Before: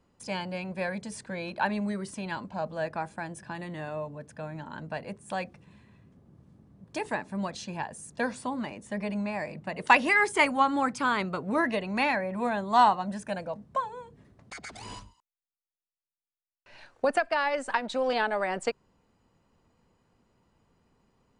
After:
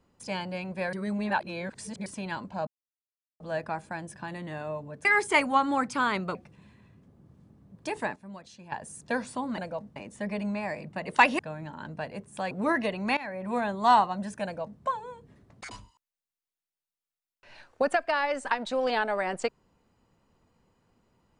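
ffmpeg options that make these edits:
ffmpeg -i in.wav -filter_complex "[0:a]asplit=14[link_01][link_02][link_03][link_04][link_05][link_06][link_07][link_08][link_09][link_10][link_11][link_12][link_13][link_14];[link_01]atrim=end=0.932[link_15];[link_02]atrim=start=0.928:end=2.062,asetpts=PTS-STARTPTS,areverse[link_16];[link_03]atrim=start=2.058:end=2.67,asetpts=PTS-STARTPTS,afade=type=out:start_time=0.608:duration=0.004:curve=hsin,apad=pad_dur=0.73[link_17];[link_04]atrim=start=2.67:end=4.322,asetpts=PTS-STARTPTS,afade=type=in:duration=0.004:curve=hsin[link_18];[link_05]atrim=start=10.098:end=11.402[link_19];[link_06]atrim=start=5.438:end=7.252[link_20];[link_07]atrim=start=7.248:end=7.812,asetpts=PTS-STARTPTS,volume=-11.5dB[link_21];[link_08]atrim=start=7.808:end=8.672[link_22];[link_09]atrim=start=13.328:end=13.712[link_23];[link_10]atrim=start=8.668:end=10.102[link_24];[link_11]atrim=start=4.318:end=5.442[link_25];[link_12]atrim=start=11.398:end=12.06,asetpts=PTS-STARTPTS,afade=type=out:start_time=0.658:duration=0.004:curve=hsin:silence=0.125893[link_26];[link_13]atrim=start=12.06:end=14.602,asetpts=PTS-STARTPTS,afade=type=in:duration=0.35:silence=0.125893[link_27];[link_14]atrim=start=14.938[link_28];[link_15][link_16]acrossfade=duration=0.004:curve1=hsin:curve2=hsin[link_29];[link_17][link_18]concat=n=2:v=0:a=1[link_30];[link_29][link_30]acrossfade=duration=0.004:curve1=hsin:curve2=hsin[link_31];[link_31][link_19]acrossfade=duration=0.004:curve1=hsin:curve2=hsin[link_32];[link_32][link_20]acrossfade=duration=0.004:curve1=hsin:curve2=hsin[link_33];[link_33][link_21]acrossfade=duration=0.004:curve1=hsin:curve2=hsin[link_34];[link_34][link_22]acrossfade=duration=0.004:curve1=hsin:curve2=hsin[link_35];[link_35][link_23]acrossfade=duration=0.004:curve1=hsin:curve2=hsin[link_36];[link_36][link_24]acrossfade=duration=0.004:curve1=hsin:curve2=hsin[link_37];[link_37][link_25]acrossfade=duration=0.004:curve1=hsin:curve2=hsin[link_38];[link_26][link_27]concat=n=2:v=0:a=1[link_39];[link_38][link_39]acrossfade=duration=0.004:curve1=hsin:curve2=hsin[link_40];[link_40][link_28]acrossfade=duration=0.004:curve1=hsin:curve2=hsin" out.wav

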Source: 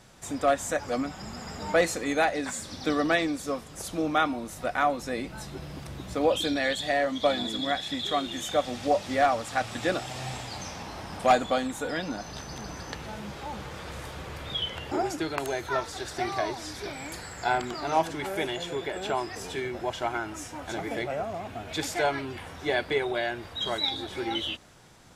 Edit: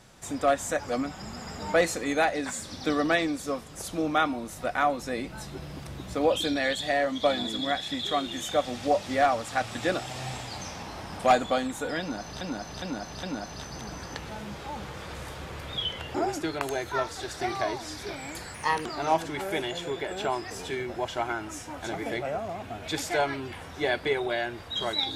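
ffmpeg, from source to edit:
ffmpeg -i in.wav -filter_complex "[0:a]asplit=6[link_01][link_02][link_03][link_04][link_05][link_06];[link_01]atrim=end=12.412[link_07];[link_02]atrim=start=11.998:end=12.412[link_08];[link_03]atrim=start=11.998:end=12.412[link_09];[link_04]atrim=start=11.998:end=17.314[link_10];[link_05]atrim=start=17.31:end=17.7,asetpts=PTS-STARTPTS,asetrate=55566,aresample=44100[link_11];[link_06]atrim=start=17.696[link_12];[link_07][link_08]acrossfade=duration=0.004:curve1=hsin:curve2=hsin[link_13];[link_13][link_09]acrossfade=duration=0.004:curve1=hsin:curve2=hsin[link_14];[link_14][link_10]acrossfade=duration=0.004:curve1=hsin:curve2=hsin[link_15];[link_15][link_11]acrossfade=duration=0.004:curve1=hsin:curve2=hsin[link_16];[link_16][link_12]acrossfade=duration=0.004:curve1=hsin:curve2=hsin" out.wav

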